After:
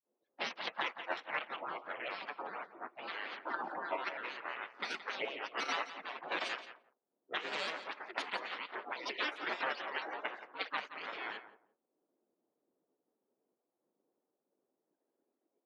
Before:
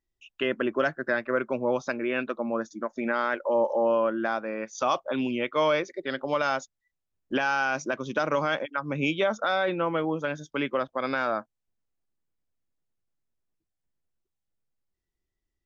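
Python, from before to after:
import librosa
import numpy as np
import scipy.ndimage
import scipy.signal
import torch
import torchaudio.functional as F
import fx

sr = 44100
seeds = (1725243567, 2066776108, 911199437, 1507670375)

p1 = fx.pitch_trill(x, sr, semitones=4.0, every_ms=130)
p2 = fx.spec_gate(p1, sr, threshold_db=-20, keep='weak')
p3 = fx.level_steps(p2, sr, step_db=14)
p4 = p2 + F.gain(torch.from_numpy(p3), 2.0).numpy()
p5 = scipy.signal.sosfilt(scipy.signal.butter(2, 2900.0, 'lowpass', fs=sr, output='sos'), p4)
p6 = fx.low_shelf(p5, sr, hz=470.0, db=-11.5)
p7 = fx.granulator(p6, sr, seeds[0], grain_ms=151.0, per_s=22.0, spray_ms=13.0, spread_st=7)
p8 = fx.echo_feedback(p7, sr, ms=173, feedback_pct=18, wet_db=-14.0)
p9 = fx.env_lowpass(p8, sr, base_hz=530.0, full_db=-40.0)
p10 = scipy.signal.sosfilt(scipy.signal.butter(4, 290.0, 'highpass', fs=sr, output='sos'), p9)
p11 = fx.tilt_eq(p10, sr, slope=-3.0)
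p12 = fx.band_squash(p11, sr, depth_pct=40)
y = F.gain(torch.from_numpy(p12), 8.0).numpy()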